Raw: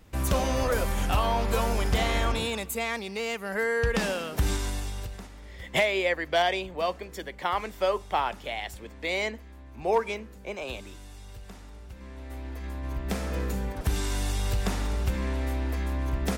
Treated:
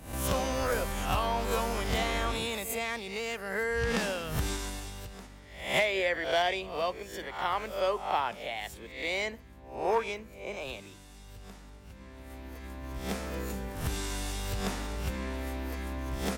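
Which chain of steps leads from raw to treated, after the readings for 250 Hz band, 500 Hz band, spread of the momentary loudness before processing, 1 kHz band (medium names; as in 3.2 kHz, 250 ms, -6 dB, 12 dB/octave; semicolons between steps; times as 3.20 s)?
-3.5 dB, -3.0 dB, 18 LU, -2.5 dB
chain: reverse spectral sustain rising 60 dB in 0.51 s; hum 50 Hz, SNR 20 dB; bass shelf 130 Hz -6 dB; trim -4 dB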